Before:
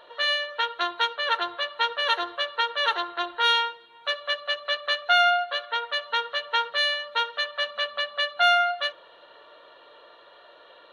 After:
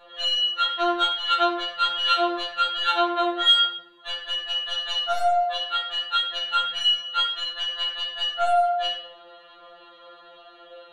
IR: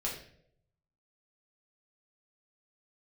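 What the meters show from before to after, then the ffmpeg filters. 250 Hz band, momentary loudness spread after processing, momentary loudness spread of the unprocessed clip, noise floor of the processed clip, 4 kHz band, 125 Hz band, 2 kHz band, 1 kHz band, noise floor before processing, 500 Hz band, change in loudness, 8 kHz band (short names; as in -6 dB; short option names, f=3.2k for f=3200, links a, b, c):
+13.5 dB, 6 LU, 9 LU, -50 dBFS, +5.0 dB, n/a, -6.5 dB, +1.5 dB, -52 dBFS, +3.0 dB, +2.0 dB, +4.0 dB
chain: -filter_complex "[0:a]aeval=exprs='0.376*(cos(1*acos(clip(val(0)/0.376,-1,1)))-cos(1*PI/2))+0.0133*(cos(5*acos(clip(val(0)/0.376,-1,1)))-cos(5*PI/2))':c=same[a];[1:a]atrim=start_sample=2205,afade=t=out:st=0.39:d=0.01,atrim=end_sample=17640[b];[a][b]afir=irnorm=-1:irlink=0,afftfilt=real='re*2.83*eq(mod(b,8),0)':imag='im*2.83*eq(mod(b,8),0)':win_size=2048:overlap=0.75"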